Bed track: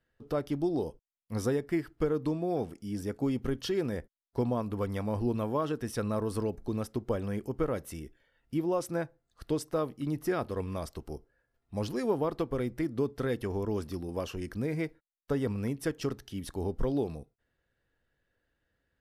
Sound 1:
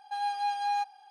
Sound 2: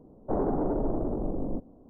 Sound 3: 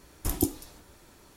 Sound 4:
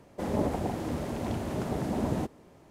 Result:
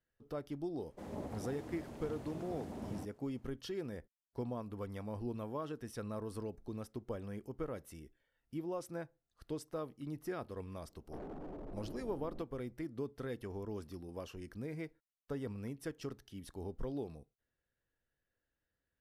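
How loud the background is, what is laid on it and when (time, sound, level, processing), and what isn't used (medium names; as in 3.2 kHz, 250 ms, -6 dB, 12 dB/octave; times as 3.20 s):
bed track -10.5 dB
0.79 s: add 4 -15 dB
10.83 s: add 2 -17.5 dB + overload inside the chain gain 25 dB
not used: 1, 3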